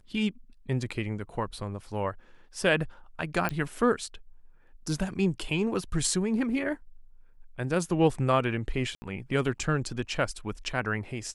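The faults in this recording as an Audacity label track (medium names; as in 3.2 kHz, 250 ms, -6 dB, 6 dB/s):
3.490000	3.490000	pop -16 dBFS
8.950000	9.020000	dropout 70 ms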